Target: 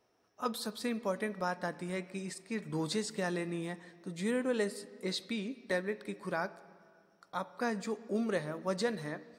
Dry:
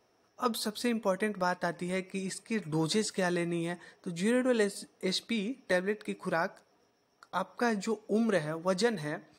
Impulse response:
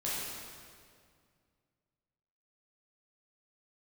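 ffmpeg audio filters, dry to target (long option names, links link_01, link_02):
-filter_complex "[0:a]asplit=2[link_01][link_02];[1:a]atrim=start_sample=2205,lowpass=4900[link_03];[link_02][link_03]afir=irnorm=-1:irlink=0,volume=-20.5dB[link_04];[link_01][link_04]amix=inputs=2:normalize=0,volume=-5dB"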